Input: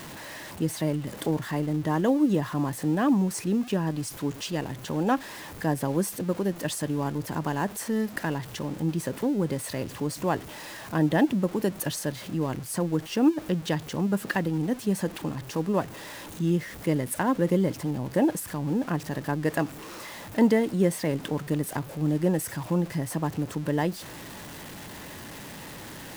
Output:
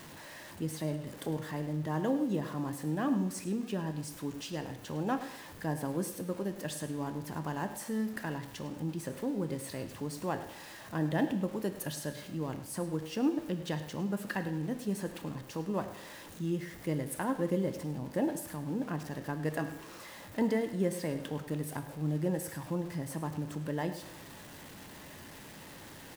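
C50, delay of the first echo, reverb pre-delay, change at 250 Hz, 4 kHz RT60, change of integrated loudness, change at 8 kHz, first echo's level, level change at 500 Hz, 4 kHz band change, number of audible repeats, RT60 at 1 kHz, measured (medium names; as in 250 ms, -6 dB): 10.0 dB, 104 ms, 11 ms, -8.0 dB, 0.85 s, -8.0 dB, -8.0 dB, -14.5 dB, -7.5 dB, -8.0 dB, 1, 0.85 s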